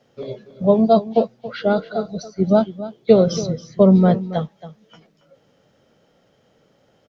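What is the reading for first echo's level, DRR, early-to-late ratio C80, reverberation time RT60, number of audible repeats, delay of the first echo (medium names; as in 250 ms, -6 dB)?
-15.0 dB, no reverb, no reverb, no reverb, 1, 277 ms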